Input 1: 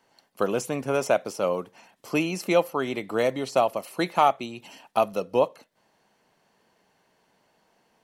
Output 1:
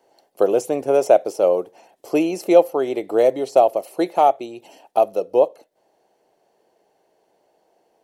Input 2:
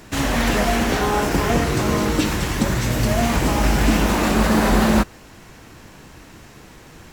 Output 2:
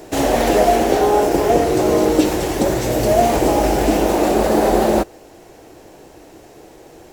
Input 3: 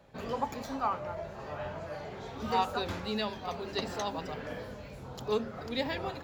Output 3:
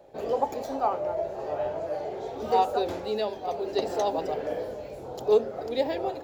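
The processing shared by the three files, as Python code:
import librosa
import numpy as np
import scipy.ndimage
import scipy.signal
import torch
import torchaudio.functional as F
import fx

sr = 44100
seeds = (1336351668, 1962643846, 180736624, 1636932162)

y = fx.band_shelf(x, sr, hz=500.0, db=13.5, octaves=1.7)
y = fx.rider(y, sr, range_db=10, speed_s=2.0)
y = fx.high_shelf(y, sr, hz=4800.0, db=7.0)
y = y * 10.0 ** (-5.0 / 20.0)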